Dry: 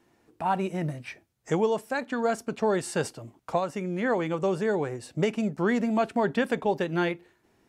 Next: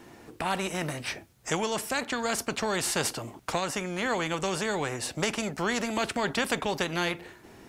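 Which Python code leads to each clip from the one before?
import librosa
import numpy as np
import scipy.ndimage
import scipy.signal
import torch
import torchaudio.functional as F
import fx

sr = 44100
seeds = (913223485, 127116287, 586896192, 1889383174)

y = fx.spectral_comp(x, sr, ratio=2.0)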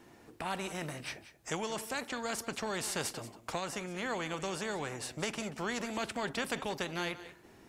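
y = x + 10.0 ** (-15.0 / 20.0) * np.pad(x, (int(183 * sr / 1000.0), 0))[:len(x)]
y = F.gain(torch.from_numpy(y), -7.5).numpy()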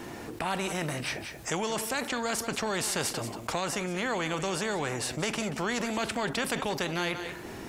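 y = fx.env_flatten(x, sr, amount_pct=50)
y = F.gain(torch.from_numpy(y), 3.5).numpy()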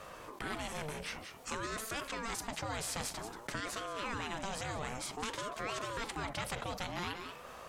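y = fx.ring_lfo(x, sr, carrier_hz=590.0, swing_pct=50, hz=0.53)
y = F.gain(torch.from_numpy(y), -5.5).numpy()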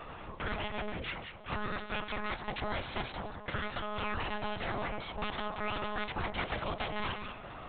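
y = fx.lpc_monotone(x, sr, seeds[0], pitch_hz=210.0, order=10)
y = F.gain(torch.from_numpy(y), 4.0).numpy()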